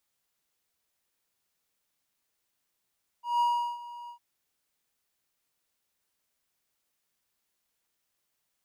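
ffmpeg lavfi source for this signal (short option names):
-f lavfi -i "aevalsrc='0.106*(1-4*abs(mod(956*t+0.25,1)-0.5))':d=0.955:s=44100,afade=t=in:d=0.172,afade=t=out:st=0.172:d=0.375:silence=0.119,afade=t=out:st=0.86:d=0.095"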